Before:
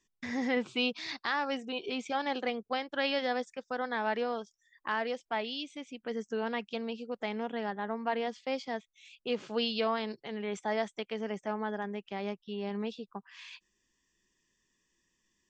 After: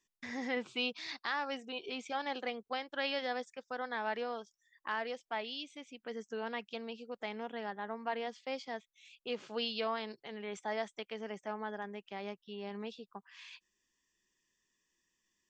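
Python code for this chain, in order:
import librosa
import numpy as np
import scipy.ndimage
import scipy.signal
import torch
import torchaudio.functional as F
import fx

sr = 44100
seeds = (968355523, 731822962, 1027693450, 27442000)

y = fx.low_shelf(x, sr, hz=350.0, db=-6.5)
y = F.gain(torch.from_numpy(y), -3.5).numpy()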